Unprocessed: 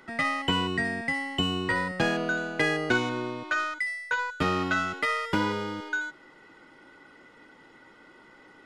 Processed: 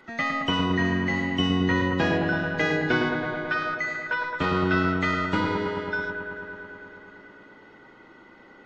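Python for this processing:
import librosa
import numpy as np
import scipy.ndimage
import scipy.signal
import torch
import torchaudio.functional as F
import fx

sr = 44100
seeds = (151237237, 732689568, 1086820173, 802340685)

y = fx.freq_compress(x, sr, knee_hz=3300.0, ratio=1.5)
y = fx.echo_wet_lowpass(y, sr, ms=109, feedback_pct=81, hz=1500.0, wet_db=-3.0)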